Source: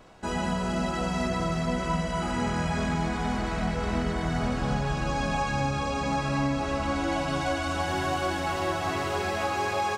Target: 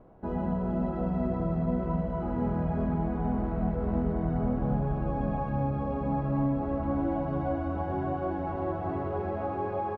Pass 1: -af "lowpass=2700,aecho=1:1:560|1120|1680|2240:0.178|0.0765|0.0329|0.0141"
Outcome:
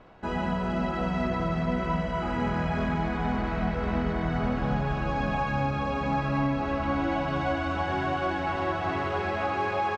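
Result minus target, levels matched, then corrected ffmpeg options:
2 kHz band +13.5 dB
-af "lowpass=680,aecho=1:1:560|1120|1680|2240:0.178|0.0765|0.0329|0.0141"

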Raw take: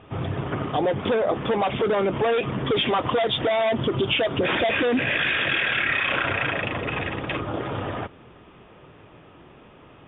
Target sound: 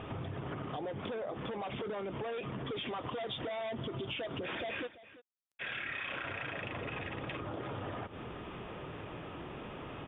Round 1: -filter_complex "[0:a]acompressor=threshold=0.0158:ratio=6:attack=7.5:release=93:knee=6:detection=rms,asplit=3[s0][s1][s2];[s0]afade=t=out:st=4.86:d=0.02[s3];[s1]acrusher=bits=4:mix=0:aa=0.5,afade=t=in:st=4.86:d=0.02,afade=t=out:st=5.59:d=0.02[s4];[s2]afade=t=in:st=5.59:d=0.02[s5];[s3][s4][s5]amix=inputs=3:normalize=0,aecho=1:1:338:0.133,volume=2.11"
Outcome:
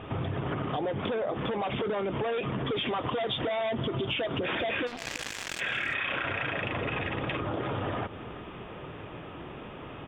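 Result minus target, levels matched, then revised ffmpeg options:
compression: peak gain reduction -8.5 dB
-filter_complex "[0:a]acompressor=threshold=0.00501:ratio=6:attack=7.5:release=93:knee=6:detection=rms,asplit=3[s0][s1][s2];[s0]afade=t=out:st=4.86:d=0.02[s3];[s1]acrusher=bits=4:mix=0:aa=0.5,afade=t=in:st=4.86:d=0.02,afade=t=out:st=5.59:d=0.02[s4];[s2]afade=t=in:st=5.59:d=0.02[s5];[s3][s4][s5]amix=inputs=3:normalize=0,aecho=1:1:338:0.133,volume=2.11"

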